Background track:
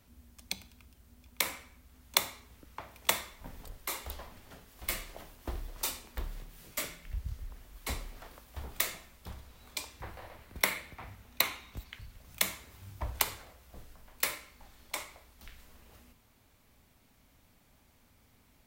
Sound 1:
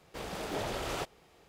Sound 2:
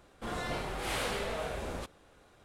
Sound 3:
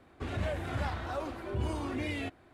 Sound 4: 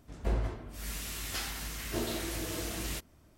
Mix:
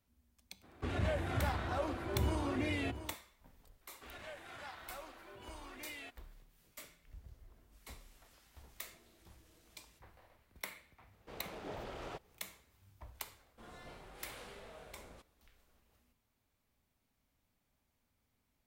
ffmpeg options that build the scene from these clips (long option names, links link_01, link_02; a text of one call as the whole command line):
ffmpeg -i bed.wav -i cue0.wav -i cue1.wav -i cue2.wav -i cue3.wav -filter_complex "[3:a]asplit=2[link_01][link_02];[0:a]volume=-16dB[link_03];[link_01]aecho=1:1:693:0.251[link_04];[link_02]highpass=frequency=1300:poles=1[link_05];[4:a]acompressor=threshold=-47dB:ratio=6:attack=3.2:release=140:knee=1:detection=peak[link_06];[1:a]lowpass=frequency=2300:poles=1[link_07];[link_04]atrim=end=2.53,asetpts=PTS-STARTPTS,volume=-1dB,afade=type=in:duration=0.02,afade=type=out:start_time=2.51:duration=0.02,adelay=620[link_08];[link_05]atrim=end=2.53,asetpts=PTS-STARTPTS,volume=-7dB,afade=type=in:duration=0.004:curve=hsin,afade=type=out:start_time=2.526:duration=0.004:curve=hsin,adelay=168021S[link_09];[link_06]atrim=end=3.37,asetpts=PTS-STARTPTS,volume=-17.5dB,afade=type=in:duration=0.004:curve=hsin,afade=type=out:start_time=3.366:duration=0.004:curve=hsin,adelay=6990[link_10];[link_07]atrim=end=1.48,asetpts=PTS-STARTPTS,volume=-9dB,afade=type=in:duration=0.004:curve=hsin,afade=type=out:start_time=1.476:duration=0.004:curve=hsin,adelay=11130[link_11];[2:a]atrim=end=2.44,asetpts=PTS-STARTPTS,volume=-17.5dB,afade=type=in:duration=0.004:curve=hsin,afade=type=out:start_time=2.436:duration=0.004:curve=hsin,adelay=13360[link_12];[link_03][link_08][link_09][link_10][link_11][link_12]amix=inputs=6:normalize=0" out.wav